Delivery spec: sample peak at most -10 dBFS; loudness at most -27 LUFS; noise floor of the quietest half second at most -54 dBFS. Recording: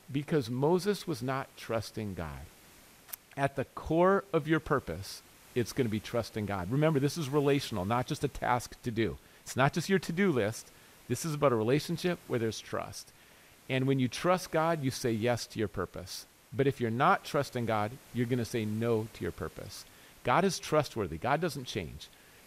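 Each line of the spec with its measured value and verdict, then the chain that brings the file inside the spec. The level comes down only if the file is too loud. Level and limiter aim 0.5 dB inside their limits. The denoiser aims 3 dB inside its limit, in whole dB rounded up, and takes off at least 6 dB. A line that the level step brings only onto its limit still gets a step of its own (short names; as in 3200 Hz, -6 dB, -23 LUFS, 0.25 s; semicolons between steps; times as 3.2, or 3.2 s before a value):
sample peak -12.0 dBFS: OK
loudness -31.5 LUFS: OK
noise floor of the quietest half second -58 dBFS: OK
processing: none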